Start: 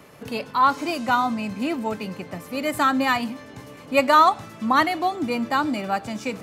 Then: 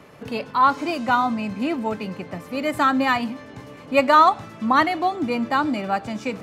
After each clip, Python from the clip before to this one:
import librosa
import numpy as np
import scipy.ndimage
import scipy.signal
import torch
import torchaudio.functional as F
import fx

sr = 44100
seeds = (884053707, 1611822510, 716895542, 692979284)

y = fx.lowpass(x, sr, hz=4000.0, slope=6)
y = y * librosa.db_to_amplitude(1.5)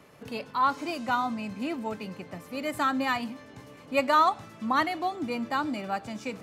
y = fx.high_shelf(x, sr, hz=4800.0, db=6.5)
y = y * librosa.db_to_amplitude(-8.0)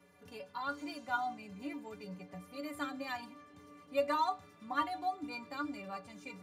y = fx.stiff_resonator(x, sr, f0_hz=86.0, decay_s=0.38, stiffness=0.03)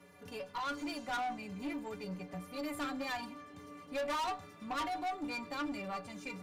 y = fx.tube_stage(x, sr, drive_db=39.0, bias=0.3)
y = y * librosa.db_to_amplitude(6.0)